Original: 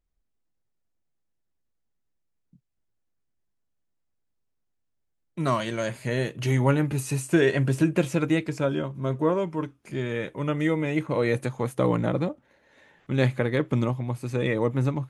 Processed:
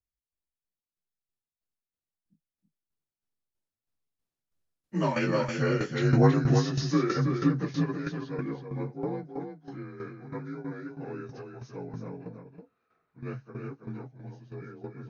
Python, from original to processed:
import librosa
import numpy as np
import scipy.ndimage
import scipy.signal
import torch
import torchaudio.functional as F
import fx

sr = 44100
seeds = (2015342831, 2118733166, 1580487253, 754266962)

p1 = fx.partial_stretch(x, sr, pct=87)
p2 = fx.doppler_pass(p1, sr, speed_mps=29, closest_m=23.0, pass_at_s=5.66)
p3 = p2 + fx.echo_single(p2, sr, ms=324, db=-6.0, dry=0)
p4 = fx.tremolo_shape(p3, sr, shape='saw_down', hz=3.1, depth_pct=70)
y = p4 * librosa.db_to_amplitude(7.0)